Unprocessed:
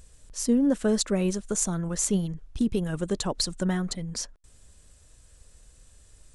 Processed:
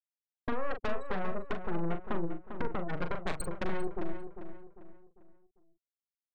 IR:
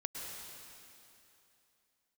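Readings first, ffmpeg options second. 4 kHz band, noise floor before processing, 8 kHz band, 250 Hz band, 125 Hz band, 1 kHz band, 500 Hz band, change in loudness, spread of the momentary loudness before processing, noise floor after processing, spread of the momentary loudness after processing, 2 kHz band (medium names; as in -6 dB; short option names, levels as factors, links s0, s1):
-18.0 dB, -56 dBFS, -24.0 dB, -13.5 dB, -10.5 dB, +2.0 dB, -7.0 dB, -10.5 dB, 10 LU, under -85 dBFS, 10 LU, 0.0 dB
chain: -filter_complex "[0:a]lowpass=f=3400:w=0.5412,lowpass=f=3400:w=1.3066,afftfilt=real='re*gte(hypot(re,im),0.0891)':imag='im*gte(hypot(re,im),0.0891)':win_size=1024:overlap=0.75,highpass=f=190:w=0.5412,highpass=f=190:w=1.3066,agate=range=0.0224:threshold=0.00398:ratio=3:detection=peak,acompressor=threshold=0.0112:ratio=5,aeval=exprs='0.0447*(cos(1*acos(clip(val(0)/0.0447,-1,1)))-cos(1*PI/2))+0.01*(cos(3*acos(clip(val(0)/0.0447,-1,1)))-cos(3*PI/2))+0.02*(cos(8*acos(clip(val(0)/0.0447,-1,1)))-cos(8*PI/2))':c=same,asoftclip=type=tanh:threshold=0.0237,asplit=2[s0][s1];[s1]adelay=41,volume=0.398[s2];[s0][s2]amix=inputs=2:normalize=0,asplit=2[s3][s4];[s4]adelay=398,lowpass=f=2600:p=1,volume=0.355,asplit=2[s5][s6];[s6]adelay=398,lowpass=f=2600:p=1,volume=0.39,asplit=2[s7][s8];[s8]adelay=398,lowpass=f=2600:p=1,volume=0.39,asplit=2[s9][s10];[s10]adelay=398,lowpass=f=2600:p=1,volume=0.39[s11];[s5][s7][s9][s11]amix=inputs=4:normalize=0[s12];[s3][s12]amix=inputs=2:normalize=0,volume=2.11"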